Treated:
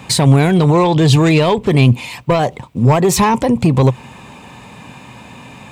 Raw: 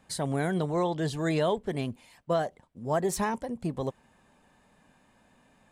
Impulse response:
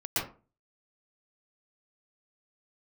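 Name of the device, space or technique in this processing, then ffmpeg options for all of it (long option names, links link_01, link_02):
mastering chain: -af "highpass=frequency=52:width=0.5412,highpass=frequency=52:width=1.3066,equalizer=frequency=3700:width_type=o:width=0.21:gain=3.5,acompressor=threshold=-30dB:ratio=3,asoftclip=type=tanh:threshold=-23.5dB,asoftclip=type=hard:threshold=-27.5dB,alimiter=level_in=31dB:limit=-1dB:release=50:level=0:latency=1,equalizer=frequency=125:width_type=o:width=0.33:gain=10,equalizer=frequency=630:width_type=o:width=0.33:gain=-5,equalizer=frequency=1000:width_type=o:width=0.33:gain=4,equalizer=frequency=1600:width_type=o:width=0.33:gain=-6,equalizer=frequency=2500:width_type=o:width=0.33:gain=8,equalizer=frequency=10000:width_type=o:width=0.33:gain=-6,volume=-5.5dB"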